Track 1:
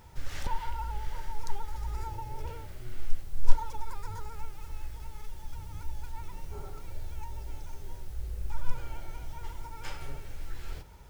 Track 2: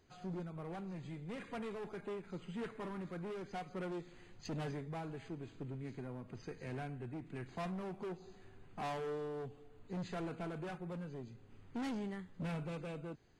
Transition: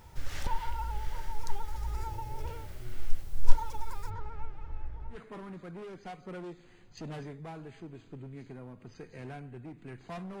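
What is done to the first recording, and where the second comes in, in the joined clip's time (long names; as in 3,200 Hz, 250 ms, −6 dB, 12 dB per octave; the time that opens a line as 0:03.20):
track 1
0:04.09–0:05.21: low-pass filter 2,600 Hz → 1,200 Hz
0:05.15: continue with track 2 from 0:02.63, crossfade 0.12 s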